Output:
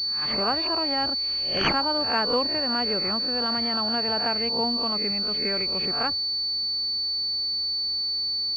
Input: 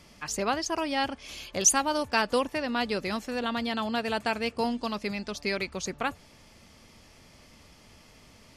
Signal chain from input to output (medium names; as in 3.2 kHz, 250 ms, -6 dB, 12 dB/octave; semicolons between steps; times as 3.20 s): reverse spectral sustain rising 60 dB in 0.44 s; class-D stage that switches slowly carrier 4.5 kHz